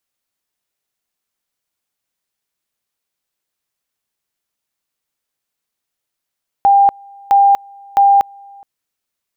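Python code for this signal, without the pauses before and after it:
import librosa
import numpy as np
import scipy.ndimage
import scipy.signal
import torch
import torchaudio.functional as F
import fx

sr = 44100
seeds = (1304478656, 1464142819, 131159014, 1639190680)

y = fx.two_level_tone(sr, hz=798.0, level_db=-6.0, drop_db=29.5, high_s=0.24, low_s=0.42, rounds=3)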